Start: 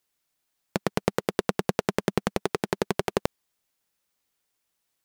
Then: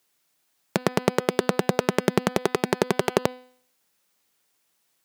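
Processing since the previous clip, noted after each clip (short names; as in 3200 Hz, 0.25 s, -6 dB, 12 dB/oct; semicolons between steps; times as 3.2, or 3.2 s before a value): HPF 120 Hz 12 dB/oct; de-hum 251.8 Hz, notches 20; in parallel at +3 dB: limiter -13 dBFS, peak gain reduction 8 dB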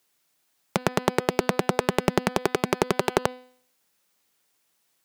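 Doppler distortion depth 0.48 ms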